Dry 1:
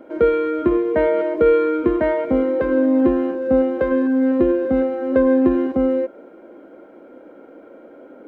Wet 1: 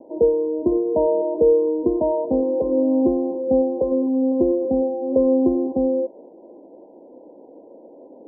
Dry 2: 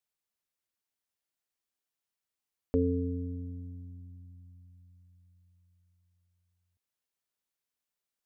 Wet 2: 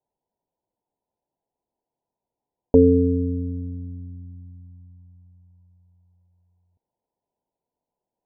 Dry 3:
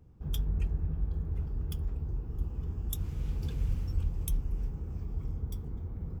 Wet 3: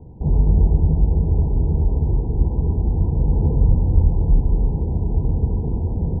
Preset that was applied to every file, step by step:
Chebyshev low-pass 1 kHz, order 10; bass shelf 180 Hz -6 dB; normalise loudness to -20 LUFS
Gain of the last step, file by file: 0.0 dB, +16.5 dB, +21.5 dB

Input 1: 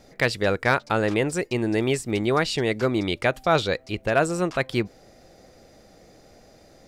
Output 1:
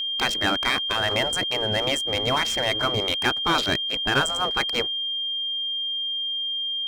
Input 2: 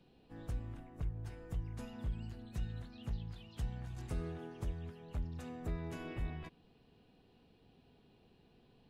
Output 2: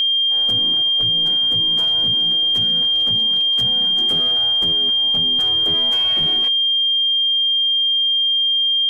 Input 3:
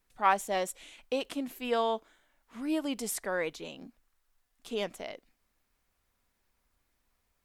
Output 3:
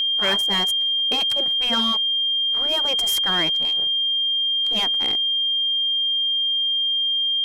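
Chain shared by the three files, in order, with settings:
local Wiener filter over 15 samples; spectral gate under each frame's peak -10 dB weak; dynamic bell 3 kHz, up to -4 dB, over -45 dBFS, Q 1.3; waveshaping leveller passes 3; whistle 3.2 kHz -23 dBFS; peak normalisation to -12 dBFS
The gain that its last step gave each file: -2.0 dB, +9.0 dB, +4.5 dB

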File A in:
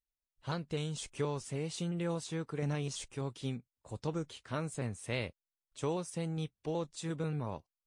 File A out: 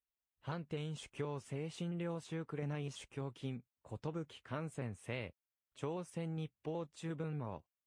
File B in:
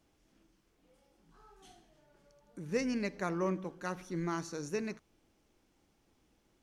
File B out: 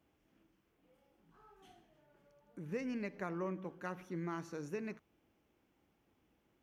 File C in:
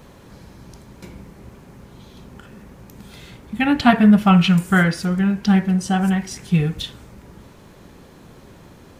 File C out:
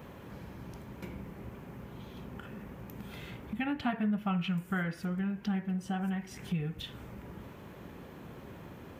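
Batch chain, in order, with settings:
high-pass 58 Hz; high-order bell 6.3 kHz -9 dB; compression 2.5:1, threshold -35 dBFS; trim -2.5 dB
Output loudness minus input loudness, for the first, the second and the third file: -5.5 LU, -6.0 LU, -20.0 LU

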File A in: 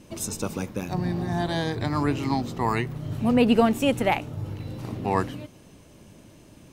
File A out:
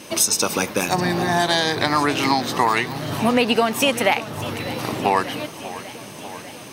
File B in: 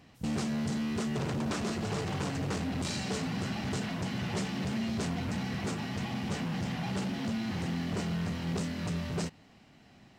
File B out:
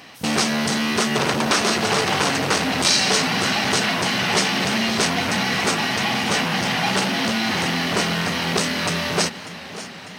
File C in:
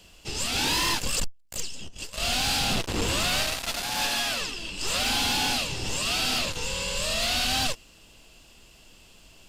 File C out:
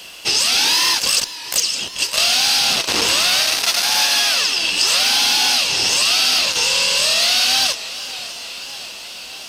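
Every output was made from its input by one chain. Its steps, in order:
high-pass 930 Hz 6 dB/octave; band-stop 7.3 kHz, Q 6.8; dynamic bell 5.5 kHz, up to +6 dB, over -44 dBFS, Q 1.5; compression 6:1, threshold -33 dBFS; modulated delay 594 ms, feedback 70%, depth 126 cents, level -15.5 dB; peak normalisation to -3 dBFS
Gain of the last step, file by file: +18.0 dB, +21.0 dB, +19.0 dB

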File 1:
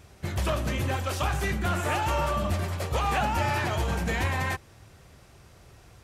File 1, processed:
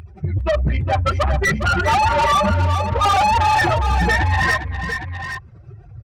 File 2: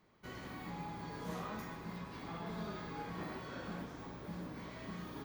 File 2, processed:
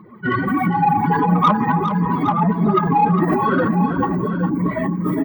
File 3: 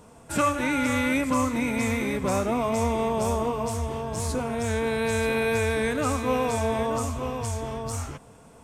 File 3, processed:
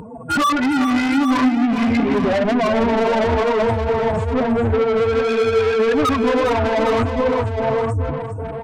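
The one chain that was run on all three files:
spectral contrast enhancement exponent 3; peaking EQ 580 Hz -7.5 dB 1.2 oct; flange 1.5 Hz, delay 0.1 ms, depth 9.3 ms, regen +19%; overdrive pedal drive 30 dB, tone 5.8 kHz, clips at -20 dBFS; on a send: multi-tap echo 407/812 ms -9/-10 dB; on the sum: normalise loudness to -18 LUFS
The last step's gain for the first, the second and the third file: +10.5 dB, +18.0 dB, +8.5 dB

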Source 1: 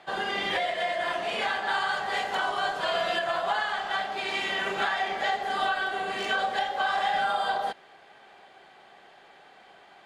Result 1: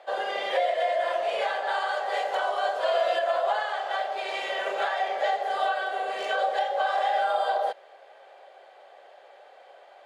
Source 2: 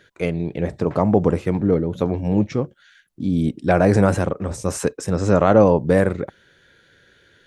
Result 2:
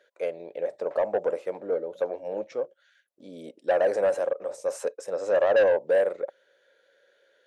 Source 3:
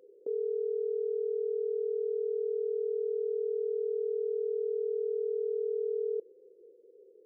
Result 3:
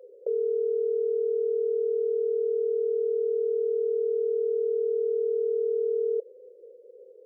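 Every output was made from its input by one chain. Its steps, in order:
resonant high-pass 550 Hz, resonance Q 5.9; saturation -3.5 dBFS; normalise loudness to -27 LUFS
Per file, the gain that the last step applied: -4.0 dB, -12.5 dB, +1.0 dB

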